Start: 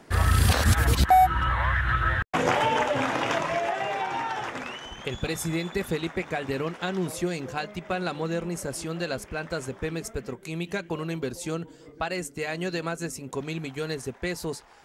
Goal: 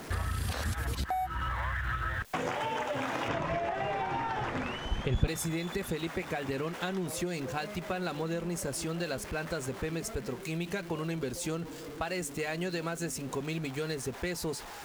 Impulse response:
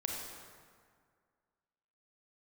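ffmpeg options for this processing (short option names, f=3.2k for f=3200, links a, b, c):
-filter_complex "[0:a]aeval=exprs='val(0)+0.5*0.0126*sgn(val(0))':c=same,acompressor=threshold=-27dB:ratio=12,asettb=1/sr,asplit=3[a][b][c];[a]atrim=end=3.284[d];[b]atrim=start=3.28:end=5.28,asetpts=PTS-STARTPTS,afade=t=in:d=0.004:c=qsin,afade=t=out:st=1.996:d=0.004:c=qsin,aemphasis=mode=reproduction:type=bsi[e];[c]atrim=start=5.276[f];[d][e]acrossfade=d=0.004:c1=hsin:c2=qsin[g];[g][f]acrossfade=d=0.004:c1=qsin:c2=hsin,volume=-2.5dB"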